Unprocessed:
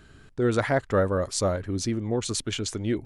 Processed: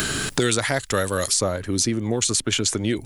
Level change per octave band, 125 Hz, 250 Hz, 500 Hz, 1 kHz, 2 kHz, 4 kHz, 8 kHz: +1.5, +3.0, +0.5, +2.5, +7.0, +10.0, +11.5 dB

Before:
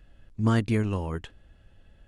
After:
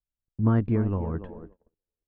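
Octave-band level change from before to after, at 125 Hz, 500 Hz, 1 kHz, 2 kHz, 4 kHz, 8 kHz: +1.5 dB, +0.5 dB, -2.0 dB, -8.0 dB, under -15 dB, under -30 dB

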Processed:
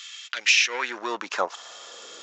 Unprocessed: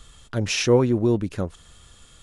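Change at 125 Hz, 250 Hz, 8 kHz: under -35 dB, -18.5 dB, +3.0 dB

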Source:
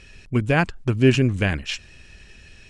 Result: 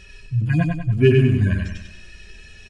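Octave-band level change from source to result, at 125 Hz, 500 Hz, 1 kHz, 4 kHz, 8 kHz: +4.5 dB, +2.5 dB, n/a, -6.5 dB, under -10 dB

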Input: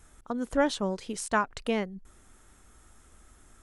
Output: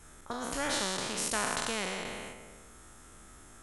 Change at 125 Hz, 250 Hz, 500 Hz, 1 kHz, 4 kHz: -4.5, -8.5, -7.0, -4.0, +5.5 dB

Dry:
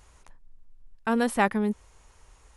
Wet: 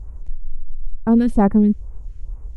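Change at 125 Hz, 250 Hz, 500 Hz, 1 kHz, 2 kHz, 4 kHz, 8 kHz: +14.0 dB, +12.5 dB, +5.5 dB, +1.5 dB, -8.0 dB, n/a, under -10 dB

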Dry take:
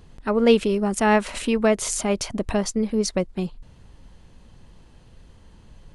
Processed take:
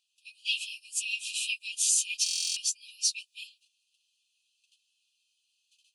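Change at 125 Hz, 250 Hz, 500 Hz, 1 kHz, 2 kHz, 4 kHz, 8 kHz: under -40 dB, under -40 dB, under -40 dB, under -40 dB, -6.0 dB, +2.5 dB, +3.0 dB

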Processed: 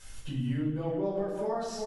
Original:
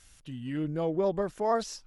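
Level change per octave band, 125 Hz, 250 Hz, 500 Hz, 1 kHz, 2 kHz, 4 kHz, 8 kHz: +4.0 dB, +0.5 dB, -3.0 dB, -5.5 dB, -3.5 dB, -1.5 dB, n/a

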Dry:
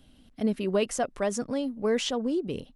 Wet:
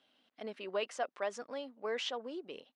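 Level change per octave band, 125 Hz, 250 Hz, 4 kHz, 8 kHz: under -20 dB, -20.0 dB, -6.5 dB, -15.5 dB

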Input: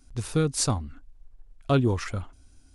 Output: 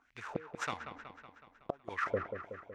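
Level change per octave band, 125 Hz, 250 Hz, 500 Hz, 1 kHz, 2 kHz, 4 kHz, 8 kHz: -23.5, -18.5, -10.0, -5.0, -0.5, -16.0, -23.5 dB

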